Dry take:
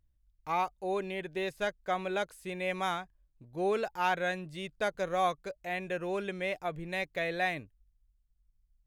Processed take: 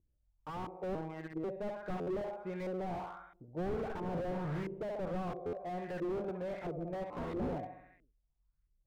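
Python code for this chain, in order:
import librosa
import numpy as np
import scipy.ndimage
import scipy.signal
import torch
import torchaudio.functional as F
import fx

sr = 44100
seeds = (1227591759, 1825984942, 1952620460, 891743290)

y = fx.delta_mod(x, sr, bps=16000, step_db=-28.0, at=(3.9, 4.63))
y = fx.low_shelf(y, sr, hz=430.0, db=3.0)
y = fx.echo_feedback(y, sr, ms=67, feedback_pct=59, wet_db=-10.5)
y = fx.robotise(y, sr, hz=159.0, at=(0.95, 1.44))
y = fx.low_shelf(y, sr, hz=61.0, db=-9.0)
y = fx.sample_hold(y, sr, seeds[0], rate_hz=1600.0, jitter_pct=0, at=(7.1, 7.56))
y = fx.filter_lfo_lowpass(y, sr, shape='saw_up', hz=1.5, low_hz=360.0, high_hz=1900.0, q=2.6)
y = fx.buffer_glitch(y, sr, at_s=(2.0, 5.46), block=512, repeats=5)
y = fx.slew_limit(y, sr, full_power_hz=12.0)
y = y * librosa.db_to_amplitude(-3.5)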